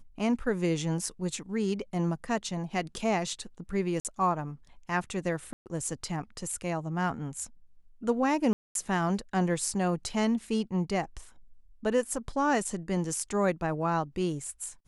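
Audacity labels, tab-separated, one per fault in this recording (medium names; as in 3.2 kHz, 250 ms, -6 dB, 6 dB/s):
4.000000	4.050000	dropout 48 ms
5.530000	5.660000	dropout 129 ms
8.530000	8.750000	dropout 222 ms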